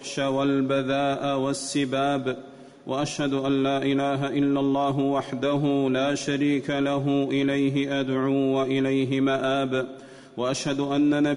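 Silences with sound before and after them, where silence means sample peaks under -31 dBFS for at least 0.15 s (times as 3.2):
2.44–2.87
9.91–10.38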